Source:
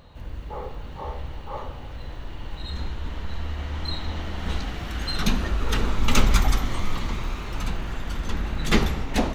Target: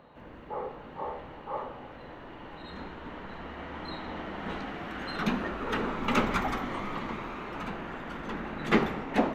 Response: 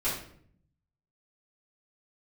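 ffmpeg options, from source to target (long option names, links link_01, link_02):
-filter_complex "[0:a]acrossover=split=170 2500:gain=0.0794 1 0.126[link_01][link_02][link_03];[link_01][link_02][link_03]amix=inputs=3:normalize=0"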